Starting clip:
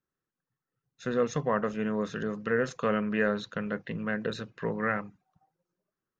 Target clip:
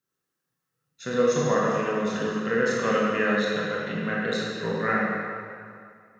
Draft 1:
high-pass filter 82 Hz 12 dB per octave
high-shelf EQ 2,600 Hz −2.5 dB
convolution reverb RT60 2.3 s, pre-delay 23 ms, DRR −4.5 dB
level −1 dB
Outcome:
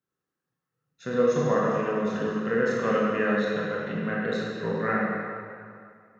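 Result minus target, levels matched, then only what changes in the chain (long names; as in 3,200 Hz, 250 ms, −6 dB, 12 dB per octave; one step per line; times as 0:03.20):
4,000 Hz band −6.0 dB
change: high-shelf EQ 2,600 Hz +8 dB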